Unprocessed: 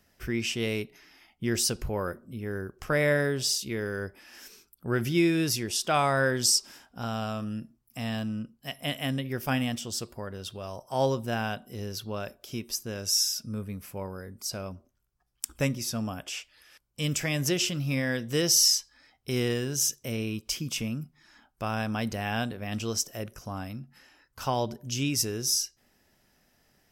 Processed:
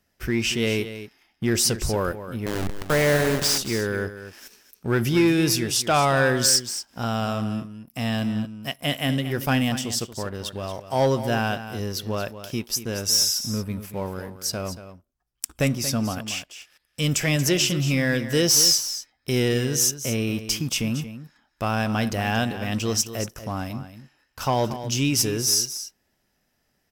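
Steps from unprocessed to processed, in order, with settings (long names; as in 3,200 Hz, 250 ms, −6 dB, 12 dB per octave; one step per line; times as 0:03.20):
0:02.46–0:03.58: hold until the input has moved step −26.5 dBFS
leveller curve on the samples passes 2
single-tap delay 231 ms −12 dB
level −1 dB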